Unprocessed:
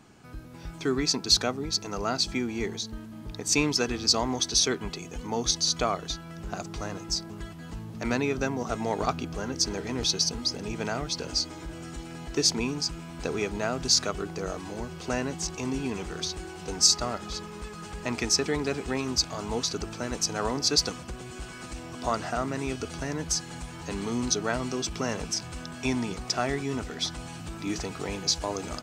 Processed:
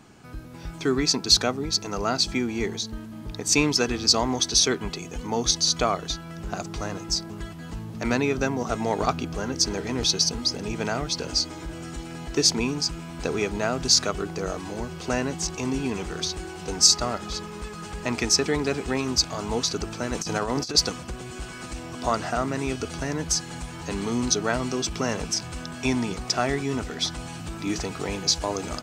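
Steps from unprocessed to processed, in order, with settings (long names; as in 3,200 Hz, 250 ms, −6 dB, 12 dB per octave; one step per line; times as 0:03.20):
0:20.15–0:20.75: compressor whose output falls as the input rises −30 dBFS, ratio −0.5
level +3.5 dB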